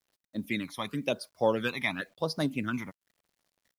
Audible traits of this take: phasing stages 12, 0.96 Hz, lowest notch 460–2900 Hz; a quantiser's noise floor 12-bit, dither none

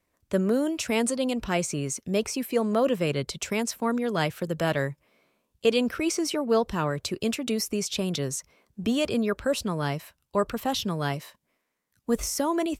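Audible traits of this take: noise floor -78 dBFS; spectral tilt -4.5 dB/oct

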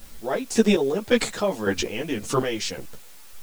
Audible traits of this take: chopped level 1.8 Hz, depth 65%, duty 35%; a quantiser's noise floor 10-bit, dither triangular; a shimmering, thickened sound

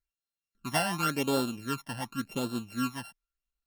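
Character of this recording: a buzz of ramps at a fixed pitch in blocks of 32 samples; phasing stages 12, 0.9 Hz, lowest notch 390–2100 Hz; Opus

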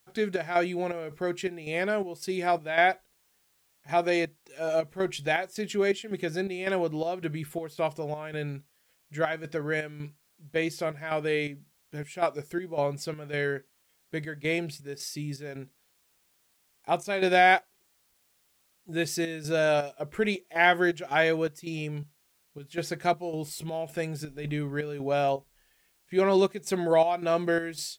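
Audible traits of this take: chopped level 1.8 Hz, depth 60%, duty 65%; a quantiser's noise floor 12-bit, dither triangular

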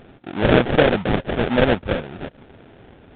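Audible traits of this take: aliases and images of a low sample rate 1100 Hz, jitter 20%; A-law

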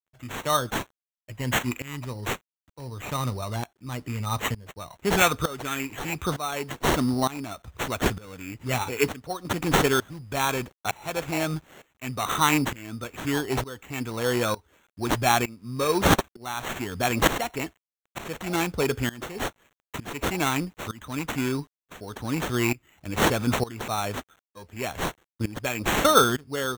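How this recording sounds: a quantiser's noise floor 10-bit, dither none; tremolo saw up 1.1 Hz, depth 90%; aliases and images of a low sample rate 4900 Hz, jitter 0%

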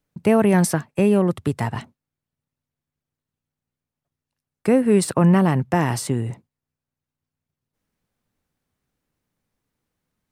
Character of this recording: noise floor -88 dBFS; spectral tilt -6.5 dB/oct

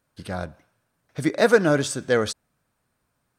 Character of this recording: noise floor -75 dBFS; spectral tilt -4.5 dB/oct

